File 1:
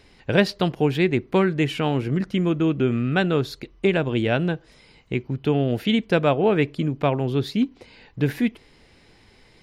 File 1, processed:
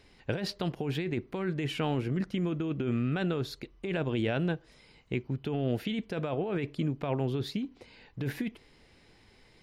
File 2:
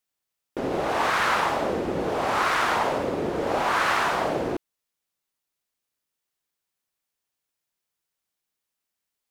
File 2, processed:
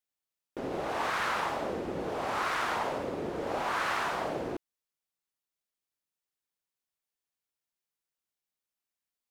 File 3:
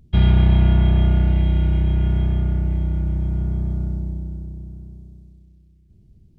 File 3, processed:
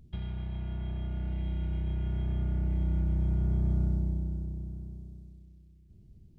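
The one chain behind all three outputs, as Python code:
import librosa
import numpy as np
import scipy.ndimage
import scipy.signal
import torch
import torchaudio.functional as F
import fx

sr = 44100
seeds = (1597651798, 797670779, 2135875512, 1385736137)

y = fx.over_compress(x, sr, threshold_db=-22.0, ratio=-1.0)
y = y * librosa.db_to_amplitude(-8.0)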